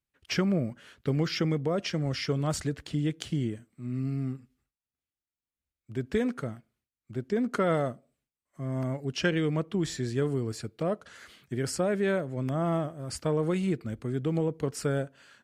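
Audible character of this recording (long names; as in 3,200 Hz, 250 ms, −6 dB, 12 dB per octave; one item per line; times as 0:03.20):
background noise floor −95 dBFS
spectral slope −6.0 dB per octave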